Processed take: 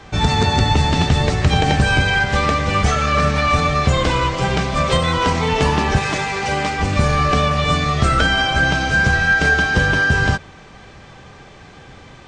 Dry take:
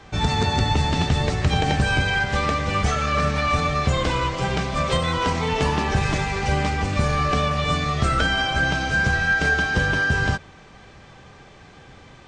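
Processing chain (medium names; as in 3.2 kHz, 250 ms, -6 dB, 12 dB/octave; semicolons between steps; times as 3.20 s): 5.98–6.80 s: high-pass 300 Hz 6 dB/octave; trim +5 dB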